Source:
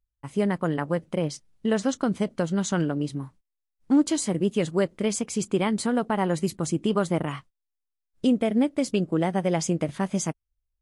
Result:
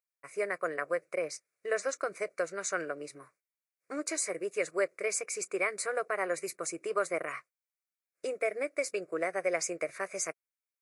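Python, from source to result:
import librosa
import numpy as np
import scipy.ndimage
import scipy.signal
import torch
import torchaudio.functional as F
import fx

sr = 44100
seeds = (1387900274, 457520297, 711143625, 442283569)

y = scipy.signal.sosfilt(scipy.signal.butter(2, 540.0, 'highpass', fs=sr, output='sos'), x)
y = fx.peak_eq(y, sr, hz=2300.0, db=12.0, octaves=0.24)
y = fx.fixed_phaser(y, sr, hz=870.0, stages=6)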